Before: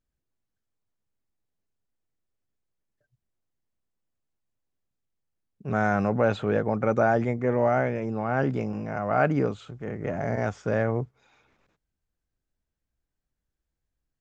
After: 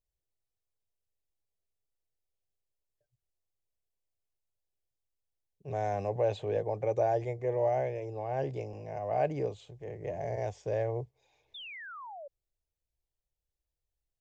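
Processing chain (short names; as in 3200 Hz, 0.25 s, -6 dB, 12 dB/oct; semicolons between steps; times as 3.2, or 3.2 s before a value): fixed phaser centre 560 Hz, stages 4; painted sound fall, 11.54–12.28, 540–3700 Hz -40 dBFS; gain -4.5 dB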